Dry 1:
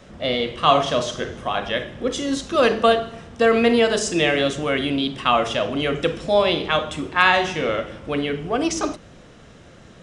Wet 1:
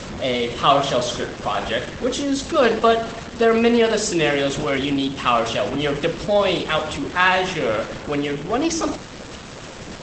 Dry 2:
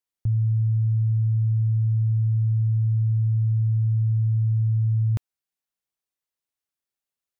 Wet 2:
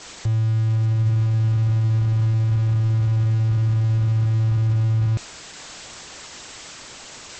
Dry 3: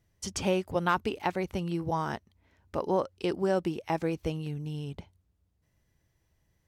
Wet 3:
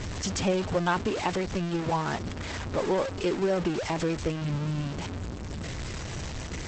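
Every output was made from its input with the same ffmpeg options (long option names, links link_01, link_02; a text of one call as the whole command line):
ffmpeg -i in.wav -af "aeval=exprs='val(0)+0.5*0.0473*sgn(val(0))':channel_layout=same" -ar 48000 -c:a libopus -b:a 12k out.opus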